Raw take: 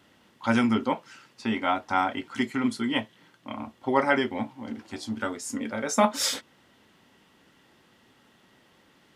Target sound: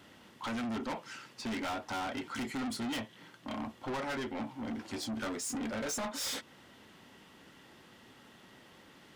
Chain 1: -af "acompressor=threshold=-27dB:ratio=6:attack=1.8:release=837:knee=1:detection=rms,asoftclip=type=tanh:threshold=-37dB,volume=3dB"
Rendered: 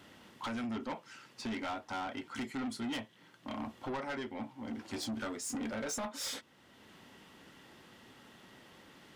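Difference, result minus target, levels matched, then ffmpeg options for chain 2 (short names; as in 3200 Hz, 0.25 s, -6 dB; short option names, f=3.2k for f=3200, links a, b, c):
compressor: peak gain reduction +7 dB
-af "acompressor=threshold=-18.5dB:ratio=6:attack=1.8:release=837:knee=1:detection=rms,asoftclip=type=tanh:threshold=-37dB,volume=3dB"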